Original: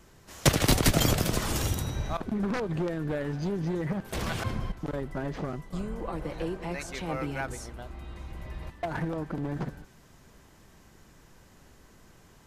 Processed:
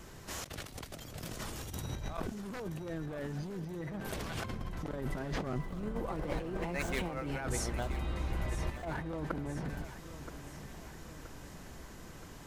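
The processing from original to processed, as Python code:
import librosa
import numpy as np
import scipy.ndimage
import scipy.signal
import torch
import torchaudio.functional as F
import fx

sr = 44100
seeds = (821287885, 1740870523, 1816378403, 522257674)

y = fx.median_filter(x, sr, points=9, at=(5.58, 7.27))
y = fx.over_compress(y, sr, threshold_db=-38.0, ratio=-1.0)
y = fx.echo_feedback(y, sr, ms=975, feedback_pct=57, wet_db=-13.0)
y = fx.attack_slew(y, sr, db_per_s=370.0)
y = y * librosa.db_to_amplitude(-1.0)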